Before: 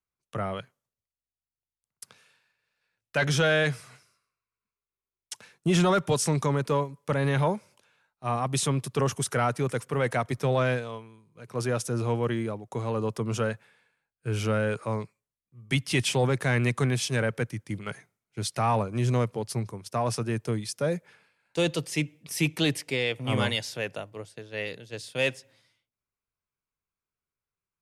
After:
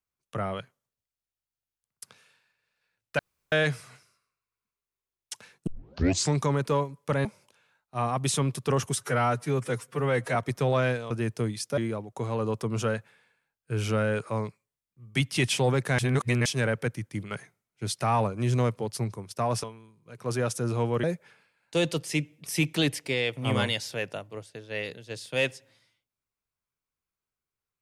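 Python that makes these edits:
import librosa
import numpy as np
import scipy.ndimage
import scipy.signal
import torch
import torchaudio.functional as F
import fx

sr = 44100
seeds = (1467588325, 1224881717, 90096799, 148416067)

y = fx.edit(x, sr, fx.room_tone_fill(start_s=3.19, length_s=0.33),
    fx.tape_start(start_s=5.67, length_s=0.67),
    fx.cut(start_s=7.25, length_s=0.29),
    fx.stretch_span(start_s=9.25, length_s=0.93, factor=1.5),
    fx.swap(start_s=10.93, length_s=1.4, other_s=20.19, other_length_s=0.67),
    fx.reverse_span(start_s=16.54, length_s=0.47), tone=tone)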